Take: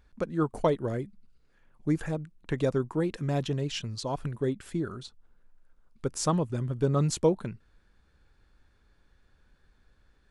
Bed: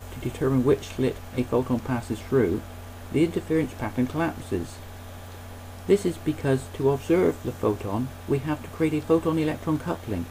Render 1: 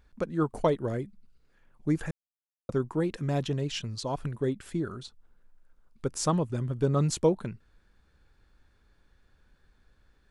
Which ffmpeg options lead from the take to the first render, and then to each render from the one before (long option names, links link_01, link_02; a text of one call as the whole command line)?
ffmpeg -i in.wav -filter_complex "[0:a]asplit=3[link_01][link_02][link_03];[link_01]atrim=end=2.11,asetpts=PTS-STARTPTS,afade=type=out:start_time=2.106:duration=0.004:curve=hsin[link_04];[link_02]atrim=start=2.11:end=2.69,asetpts=PTS-STARTPTS,volume=0[link_05];[link_03]atrim=start=2.69,asetpts=PTS-STARTPTS,afade=type=in:duration=0.004:curve=hsin[link_06];[link_04][link_05][link_06]concat=n=3:v=0:a=1" out.wav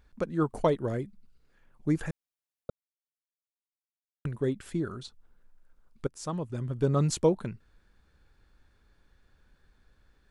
ffmpeg -i in.wav -filter_complex "[0:a]asplit=4[link_01][link_02][link_03][link_04];[link_01]atrim=end=2.7,asetpts=PTS-STARTPTS,afade=type=out:start_time=2.696:duration=0.004:curve=hsin[link_05];[link_02]atrim=start=2.7:end=4.25,asetpts=PTS-STARTPTS,volume=0[link_06];[link_03]atrim=start=4.25:end=6.07,asetpts=PTS-STARTPTS,afade=type=in:duration=0.004:curve=hsin,afade=type=out:start_time=1.816:duration=0.004:curve=hsin:silence=0.141254[link_07];[link_04]atrim=start=6.07,asetpts=PTS-STARTPTS,afade=type=in:duration=0.79:silence=0.141254[link_08];[link_05][link_06][link_07][link_08]concat=n=4:v=0:a=1" out.wav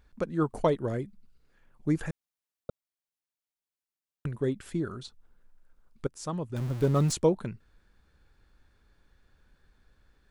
ffmpeg -i in.wav -filter_complex "[0:a]asettb=1/sr,asplit=3[link_01][link_02][link_03];[link_01]atrim=end=6.564[link_04];[link_02]atrim=start=6.56:end=7.13,asetpts=PTS-STARTPTS,afade=type=in:duration=0.004:curve=qsin,afade=type=out:start_time=0.566:duration=0.004:curve=qsin,aeval=exprs='val(0)+0.5*0.0168*sgn(val(0))':channel_layout=same[link_05];[link_03]atrim=start=7.126[link_06];[link_04][link_05]acrossfade=duration=0.004:curve1=hsin:curve2=qsin[link_07];[link_07][link_06]acrossfade=duration=0.004:curve1=qsin:curve2=hsin" out.wav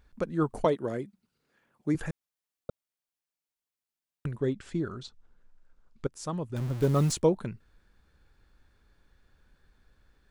ffmpeg -i in.wav -filter_complex "[0:a]asettb=1/sr,asplit=3[link_01][link_02][link_03];[link_01]atrim=end=0.654[link_04];[link_02]atrim=start=0.65:end=1.95,asetpts=PTS-STARTPTS,afade=type=in:duration=0.004:curve=qsin,afade=type=out:start_time=1.296:duration=0.004:curve=qsin,highpass=170[link_05];[link_03]atrim=start=1.946[link_06];[link_04][link_05]acrossfade=duration=0.004:curve1=hsin:curve2=qsin[link_07];[link_07][link_06]acrossfade=duration=0.004:curve1=qsin:curve2=hsin,asettb=1/sr,asplit=3[link_08][link_09][link_10];[link_08]atrim=end=4.374[link_11];[link_09]atrim=start=4.37:end=6.12,asetpts=PTS-STARTPTS,afade=type=in:duration=0.004:curve=qsin,afade=type=out:start_time=1.746:duration=0.004:curve=qsin,lowpass=frequency=7700:width=0.5412,lowpass=frequency=7700:width=1.3066[link_12];[link_10]atrim=start=6.116[link_13];[link_11][link_12]acrossfade=duration=0.004:curve1=hsin:curve2=qsin[link_14];[link_14][link_13]acrossfade=duration=0.004:curve1=qsin:curve2=hsin,asettb=1/sr,asplit=3[link_15][link_16][link_17];[link_15]atrim=end=6.814[link_18];[link_16]atrim=start=6.81:end=7.22,asetpts=PTS-STARTPTS,afade=type=in:duration=0.004:curve=qsin,afade=type=out:start_time=0.406:duration=0.004:curve=qsin,acrusher=bits=7:mode=log:mix=0:aa=0.000001[link_19];[link_17]atrim=start=7.216[link_20];[link_18][link_19]acrossfade=duration=0.004:curve1=hsin:curve2=qsin[link_21];[link_21][link_20]acrossfade=duration=0.004:curve1=qsin:curve2=hsin" out.wav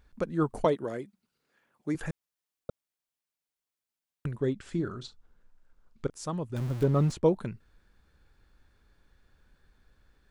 ffmpeg -i in.wav -filter_complex "[0:a]asettb=1/sr,asplit=3[link_01][link_02][link_03];[link_01]atrim=end=0.844[link_04];[link_02]atrim=start=0.84:end=2.03,asetpts=PTS-STARTPTS,afade=type=in:duration=0.004:curve=qsin,afade=type=out:start_time=1.186:duration=0.004:curve=qsin,lowshelf=frequency=280:gain=-7[link_05];[link_03]atrim=start=2.026[link_06];[link_04][link_05]acrossfade=duration=0.004:curve1=hsin:curve2=qsin[link_07];[link_07][link_06]acrossfade=duration=0.004:curve1=qsin:curve2=hsin,asettb=1/sr,asplit=3[link_08][link_09][link_10];[link_08]atrim=end=4.654[link_11];[link_09]atrim=start=4.65:end=6.1,asetpts=PTS-STARTPTS,afade=type=in:duration=0.004:curve=qsin,afade=type=out:start_time=1.446:duration=0.004:curve=qsin,asplit=2[link_12][link_13];[link_13]adelay=41,volume=-13dB[link_14];[link_12][link_14]amix=inputs=2:normalize=0,atrim=end_sample=63945[link_15];[link_10]atrim=start=6.096[link_16];[link_11][link_15]acrossfade=duration=0.004:curve1=hsin:curve2=qsin[link_17];[link_17][link_16]acrossfade=duration=0.004:curve1=qsin:curve2=hsin,asettb=1/sr,asplit=3[link_18][link_19][link_20];[link_18]atrim=end=6.834[link_21];[link_19]atrim=start=6.83:end=7.26,asetpts=PTS-STARTPTS,afade=type=in:duration=0.004:curve=qsin,afade=type=out:start_time=0.426:duration=0.004:curve=qsin,lowpass=frequency=1700:poles=1[link_22];[link_20]atrim=start=7.256[link_23];[link_21][link_22]acrossfade=duration=0.004:curve1=hsin:curve2=qsin[link_24];[link_24][link_23]acrossfade=duration=0.004:curve1=qsin:curve2=hsin" out.wav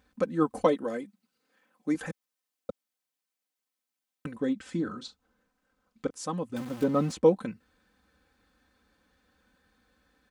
ffmpeg -i in.wav -af "highpass=110,aecho=1:1:3.9:0.81" out.wav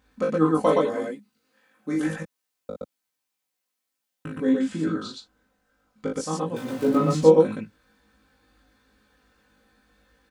ffmpeg -i in.wav -filter_complex "[0:a]asplit=2[link_01][link_02];[link_02]adelay=19,volume=-2dB[link_03];[link_01][link_03]amix=inputs=2:normalize=0,asplit=2[link_04][link_05];[link_05]aecho=0:1:37.9|119.5:0.708|0.891[link_06];[link_04][link_06]amix=inputs=2:normalize=0" out.wav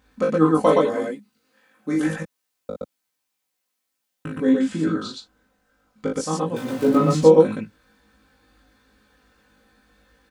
ffmpeg -i in.wav -af "volume=3.5dB,alimiter=limit=-1dB:level=0:latency=1" out.wav